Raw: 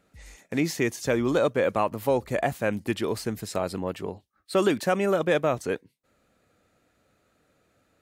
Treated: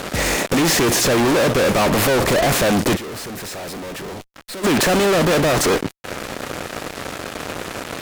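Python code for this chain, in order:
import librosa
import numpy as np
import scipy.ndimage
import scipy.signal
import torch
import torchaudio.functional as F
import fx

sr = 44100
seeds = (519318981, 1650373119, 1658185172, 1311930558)

y = fx.bin_compress(x, sr, power=0.6)
y = fx.fuzz(y, sr, gain_db=41.0, gate_db=-44.0)
y = fx.tube_stage(y, sr, drive_db=28.0, bias=0.75, at=(2.95, 4.63), fade=0.02)
y = y * 10.0 ** (-1.5 / 20.0)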